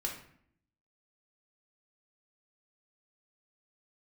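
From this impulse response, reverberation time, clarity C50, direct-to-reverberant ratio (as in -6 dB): 0.60 s, 6.5 dB, -0.5 dB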